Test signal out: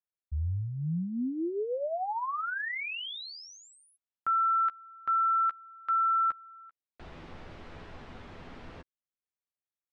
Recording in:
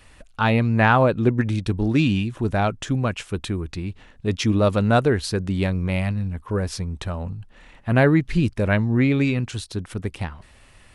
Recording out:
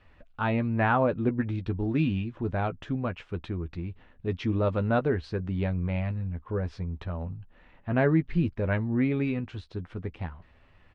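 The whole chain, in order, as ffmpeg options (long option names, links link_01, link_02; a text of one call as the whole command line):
ffmpeg -i in.wav -filter_complex "[0:a]lowpass=3800,aemphasis=mode=reproduction:type=75kf,asplit=2[link_01][link_02];[link_02]adelay=12,volume=-9dB[link_03];[link_01][link_03]amix=inputs=2:normalize=0,volume=-7dB" out.wav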